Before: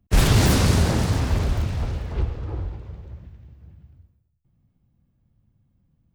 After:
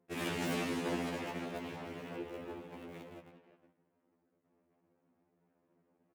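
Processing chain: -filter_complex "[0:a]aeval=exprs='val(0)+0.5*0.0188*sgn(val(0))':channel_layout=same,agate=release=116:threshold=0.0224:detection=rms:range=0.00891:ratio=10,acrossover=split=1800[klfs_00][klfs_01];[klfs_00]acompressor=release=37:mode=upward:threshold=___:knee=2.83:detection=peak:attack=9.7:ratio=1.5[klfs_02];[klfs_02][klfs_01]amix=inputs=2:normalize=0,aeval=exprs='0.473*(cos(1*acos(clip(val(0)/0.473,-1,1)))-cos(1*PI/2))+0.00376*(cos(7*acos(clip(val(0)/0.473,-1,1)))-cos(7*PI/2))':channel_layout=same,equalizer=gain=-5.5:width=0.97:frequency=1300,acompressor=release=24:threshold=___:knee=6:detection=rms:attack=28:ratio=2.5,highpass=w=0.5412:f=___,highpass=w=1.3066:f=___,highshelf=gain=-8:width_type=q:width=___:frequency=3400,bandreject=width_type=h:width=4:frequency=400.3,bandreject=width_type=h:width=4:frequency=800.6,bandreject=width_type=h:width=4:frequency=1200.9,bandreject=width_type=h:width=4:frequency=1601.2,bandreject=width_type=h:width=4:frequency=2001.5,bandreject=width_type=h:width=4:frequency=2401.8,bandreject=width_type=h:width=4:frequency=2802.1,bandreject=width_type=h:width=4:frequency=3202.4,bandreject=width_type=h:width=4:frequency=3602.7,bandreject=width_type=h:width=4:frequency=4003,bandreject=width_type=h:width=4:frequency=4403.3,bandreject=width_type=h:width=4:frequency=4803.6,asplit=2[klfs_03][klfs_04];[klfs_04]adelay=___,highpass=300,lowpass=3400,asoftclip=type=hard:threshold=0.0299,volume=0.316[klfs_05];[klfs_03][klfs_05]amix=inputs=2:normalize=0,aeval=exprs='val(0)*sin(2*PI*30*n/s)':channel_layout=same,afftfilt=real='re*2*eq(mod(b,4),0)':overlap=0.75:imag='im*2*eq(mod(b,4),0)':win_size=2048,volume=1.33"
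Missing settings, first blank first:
0.0316, 0.0282, 210, 210, 1.5, 360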